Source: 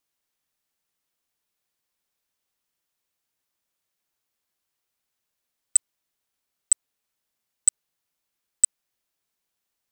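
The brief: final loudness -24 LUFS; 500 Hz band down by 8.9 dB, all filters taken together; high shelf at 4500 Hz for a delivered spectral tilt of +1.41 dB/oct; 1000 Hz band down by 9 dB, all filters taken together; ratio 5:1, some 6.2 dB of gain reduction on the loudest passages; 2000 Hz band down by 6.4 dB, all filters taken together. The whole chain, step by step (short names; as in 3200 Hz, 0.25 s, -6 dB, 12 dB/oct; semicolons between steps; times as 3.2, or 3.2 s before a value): bell 500 Hz -9 dB; bell 1000 Hz -7.5 dB; bell 2000 Hz -5 dB; high shelf 4500 Hz -3.5 dB; compressor 5:1, threshold -23 dBFS; gain +7 dB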